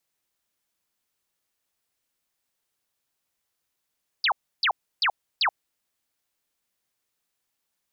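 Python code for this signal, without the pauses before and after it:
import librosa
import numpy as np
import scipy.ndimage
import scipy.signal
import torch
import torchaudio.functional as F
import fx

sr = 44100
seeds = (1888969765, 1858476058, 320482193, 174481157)

y = fx.laser_zaps(sr, level_db=-19.0, start_hz=5200.0, end_hz=690.0, length_s=0.08, wave='sine', shots=4, gap_s=0.31)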